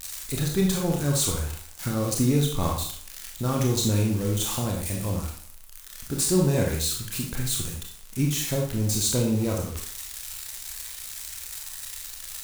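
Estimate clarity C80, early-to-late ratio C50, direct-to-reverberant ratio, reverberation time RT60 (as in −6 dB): 7.5 dB, 4.0 dB, −1.0 dB, 0.55 s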